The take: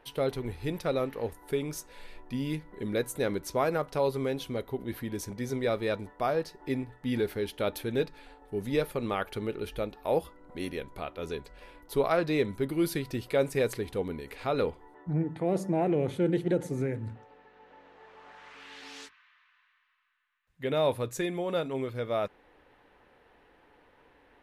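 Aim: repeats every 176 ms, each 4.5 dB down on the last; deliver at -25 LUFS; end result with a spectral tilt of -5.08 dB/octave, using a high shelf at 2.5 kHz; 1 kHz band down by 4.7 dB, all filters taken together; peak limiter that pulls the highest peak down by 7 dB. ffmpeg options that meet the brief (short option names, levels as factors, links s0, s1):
-af "equalizer=f=1000:t=o:g=-8,highshelf=f=2500:g=5.5,alimiter=limit=0.0794:level=0:latency=1,aecho=1:1:176|352|528|704|880|1056|1232|1408|1584:0.596|0.357|0.214|0.129|0.0772|0.0463|0.0278|0.0167|0.01,volume=2.37"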